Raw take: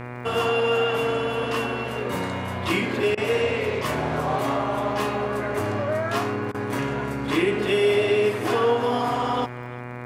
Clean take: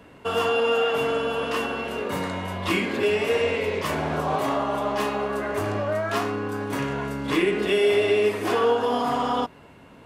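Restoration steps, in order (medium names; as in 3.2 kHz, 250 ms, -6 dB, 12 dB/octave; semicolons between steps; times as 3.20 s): de-click; de-hum 122.5 Hz, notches 20; interpolate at 3.15/6.52 s, 23 ms; inverse comb 347 ms -21.5 dB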